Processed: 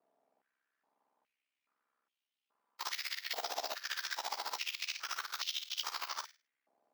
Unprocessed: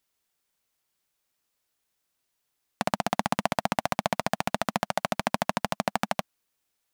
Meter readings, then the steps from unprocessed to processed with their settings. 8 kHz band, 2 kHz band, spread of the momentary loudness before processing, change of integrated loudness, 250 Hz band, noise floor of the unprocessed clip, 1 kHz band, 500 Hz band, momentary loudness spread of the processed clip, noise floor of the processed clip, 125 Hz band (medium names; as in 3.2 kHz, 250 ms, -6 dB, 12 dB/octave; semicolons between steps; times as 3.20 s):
-4.5 dB, -8.0 dB, 3 LU, -9.0 dB, -35.0 dB, -79 dBFS, -14.5 dB, -19.0 dB, 3 LU, under -85 dBFS, under -40 dB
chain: spectrum inverted on a logarithmic axis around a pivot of 1.9 kHz; treble shelf 3.9 kHz +3.5 dB; slow attack 130 ms; waveshaping leveller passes 1; compression 6:1, threshold -36 dBFS, peak gain reduction 12 dB; ring modulator 33 Hz; flutter echo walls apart 8.9 m, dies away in 0.31 s; step-sequenced high-pass 2.4 Hz 710–3000 Hz